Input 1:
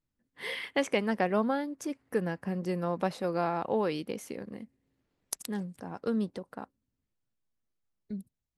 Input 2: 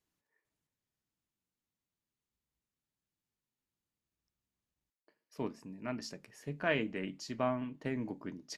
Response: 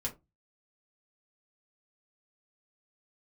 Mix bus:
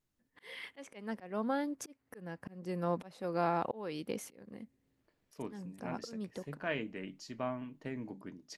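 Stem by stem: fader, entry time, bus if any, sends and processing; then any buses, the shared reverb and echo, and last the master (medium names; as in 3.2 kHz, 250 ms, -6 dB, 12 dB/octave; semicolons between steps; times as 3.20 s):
-0.5 dB, 0.00 s, no send, slow attack 472 ms
-4.5 dB, 0.00 s, no send, none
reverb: none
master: none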